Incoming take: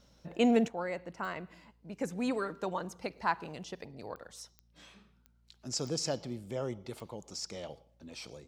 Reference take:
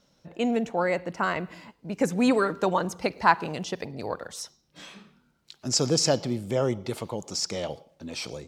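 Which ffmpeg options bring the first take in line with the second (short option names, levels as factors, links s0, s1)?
-af "adeclick=t=4,bandreject=f=58:t=h:w=4,bandreject=f=116:t=h:w=4,bandreject=f=174:t=h:w=4,bandreject=f=232:t=h:w=4,asetnsamples=n=441:p=0,asendcmd='0.68 volume volume 11dB',volume=1"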